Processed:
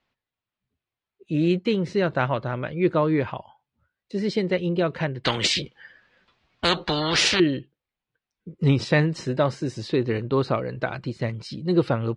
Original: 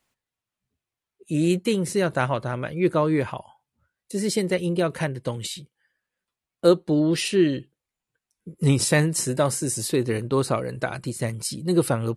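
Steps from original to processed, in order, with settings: LPF 4400 Hz 24 dB/oct; 5.24–7.4 spectral compressor 4:1

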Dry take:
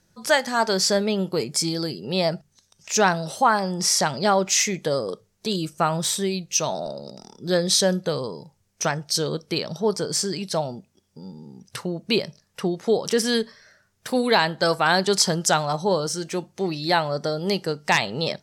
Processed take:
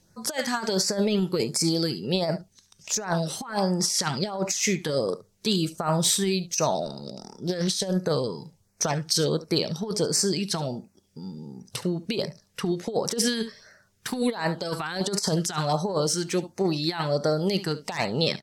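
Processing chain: echo 71 ms -17 dB; negative-ratio compressor -23 dBFS, ratio -0.5; LFO notch sine 1.4 Hz 540–3400 Hz; 7.07–7.87 Doppler distortion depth 0.2 ms

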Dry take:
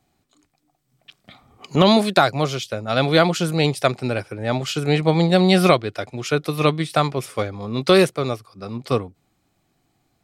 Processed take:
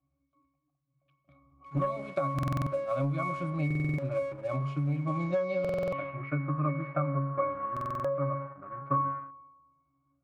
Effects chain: octave resonator C#, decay 0.61 s; spring tank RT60 1.2 s, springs 33 ms, chirp 50 ms, DRR 15.5 dB; sample leveller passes 1; bell 1100 Hz +7.5 dB 1.4 oct; compressor 10:1, threshold -33 dBFS, peak gain reduction 14.5 dB; low-pass sweep 9900 Hz -> 1500 Hz, 4.96–6.46; stuck buffer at 2.34/3.66/5.6/7.72, samples 2048, times 6; gain +6.5 dB

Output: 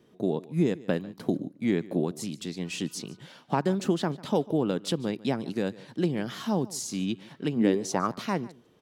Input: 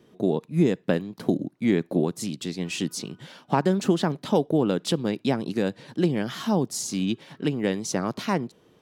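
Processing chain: 7.55–8.06 bell 180 Hz -> 1300 Hz +14 dB 0.62 oct; on a send: echo 0.147 s -20.5 dB; on the sum: gain -4 dB

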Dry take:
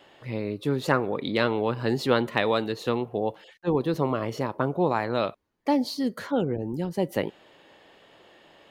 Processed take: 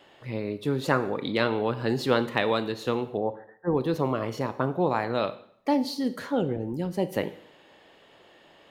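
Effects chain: 3.17–3.75 brick-wall FIR low-pass 2000 Hz; on a send: reverb RT60 0.65 s, pre-delay 18 ms, DRR 12 dB; on the sum: gain -1 dB

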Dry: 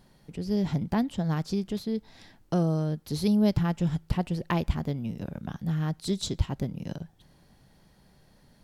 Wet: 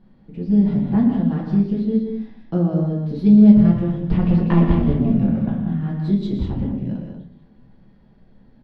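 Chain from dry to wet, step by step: bell 230 Hz +11.5 dB 0.59 oct; 4.05–5.5 sample leveller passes 2; air absorption 350 m; loudspeakers at several distances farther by 41 m -9 dB, 54 m -12 dB, 65 m -7 dB; shoebox room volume 35 m³, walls mixed, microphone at 0.71 m; gain -3 dB

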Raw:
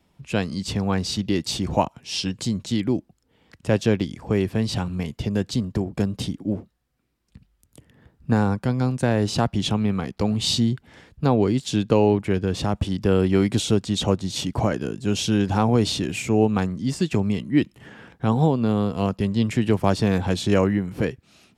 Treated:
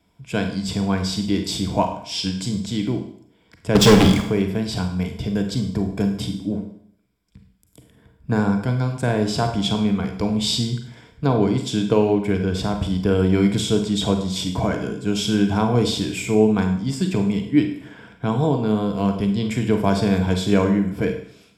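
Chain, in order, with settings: ripple EQ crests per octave 1.7, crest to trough 8 dB; 3.75–4.22 sample leveller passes 5; Schroeder reverb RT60 0.63 s, combs from 33 ms, DRR 5 dB; gain -1 dB

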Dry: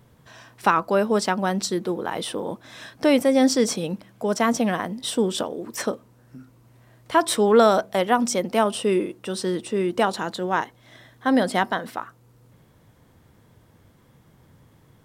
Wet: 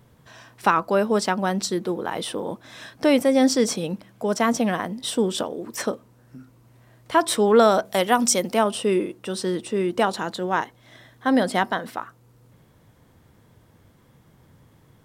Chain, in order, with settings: 7.85–8.54 high shelf 3600 Hz +9.5 dB

